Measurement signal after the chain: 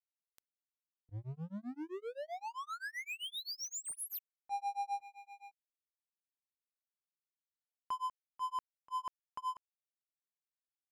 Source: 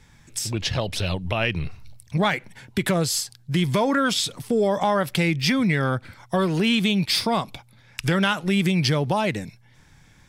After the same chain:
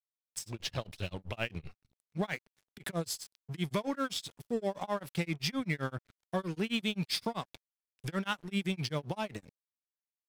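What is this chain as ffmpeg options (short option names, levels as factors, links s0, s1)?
-af "aeval=exprs='sgn(val(0))*max(abs(val(0))-0.0141,0)':c=same,tremolo=f=7.7:d=0.99,volume=0.398"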